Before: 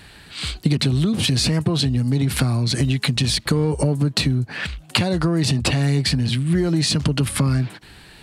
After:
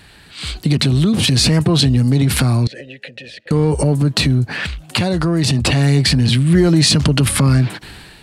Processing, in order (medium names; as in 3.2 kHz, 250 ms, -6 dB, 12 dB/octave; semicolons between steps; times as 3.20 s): level rider; transient shaper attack -4 dB, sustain +3 dB; 2.67–3.51 s: vowel filter e